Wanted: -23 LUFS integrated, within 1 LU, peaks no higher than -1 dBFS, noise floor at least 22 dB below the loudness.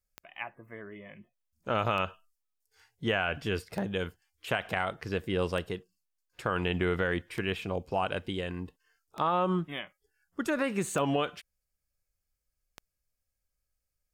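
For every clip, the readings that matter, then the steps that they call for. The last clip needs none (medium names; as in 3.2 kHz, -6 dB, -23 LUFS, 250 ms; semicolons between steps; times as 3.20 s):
clicks found 8; loudness -32.0 LUFS; peak level -14.5 dBFS; loudness target -23.0 LUFS
-> de-click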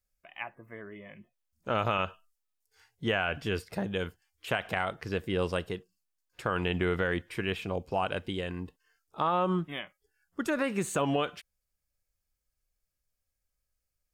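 clicks found 0; loudness -32.0 LUFS; peak level -14.5 dBFS; loudness target -23.0 LUFS
-> trim +9 dB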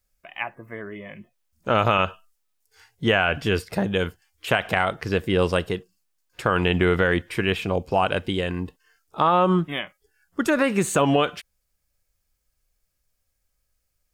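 loudness -23.0 LUFS; peak level -5.5 dBFS; noise floor -75 dBFS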